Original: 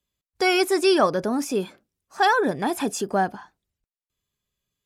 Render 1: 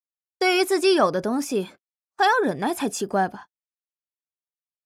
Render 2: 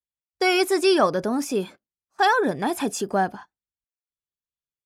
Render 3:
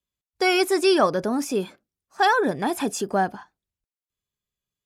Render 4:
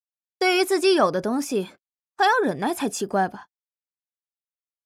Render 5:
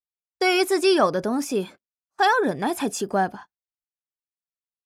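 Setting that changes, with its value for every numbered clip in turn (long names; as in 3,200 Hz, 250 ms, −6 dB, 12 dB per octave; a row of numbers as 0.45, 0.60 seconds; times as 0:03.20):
noise gate, range: −45, −21, −7, −57, −33 decibels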